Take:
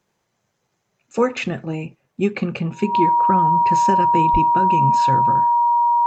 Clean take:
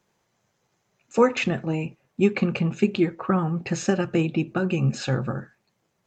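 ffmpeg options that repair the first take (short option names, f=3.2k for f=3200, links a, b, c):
-filter_complex "[0:a]bandreject=f=950:w=30,asplit=3[a][b][c];[a]afade=t=out:st=4.32:d=0.02[d];[b]highpass=f=140:w=0.5412,highpass=f=140:w=1.3066,afade=t=in:st=4.32:d=0.02,afade=t=out:st=4.44:d=0.02[e];[c]afade=t=in:st=4.44:d=0.02[f];[d][e][f]amix=inputs=3:normalize=0"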